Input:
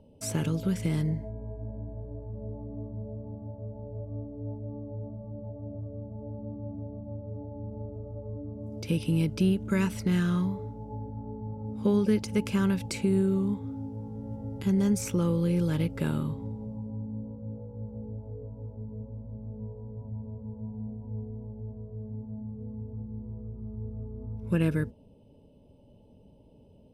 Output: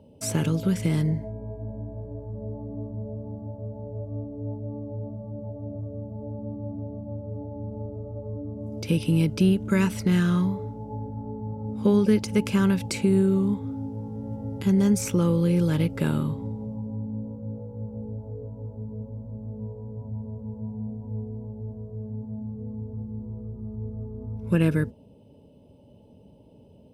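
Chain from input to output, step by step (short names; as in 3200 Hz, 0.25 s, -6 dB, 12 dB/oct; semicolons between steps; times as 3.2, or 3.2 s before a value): HPF 71 Hz; gain +4.5 dB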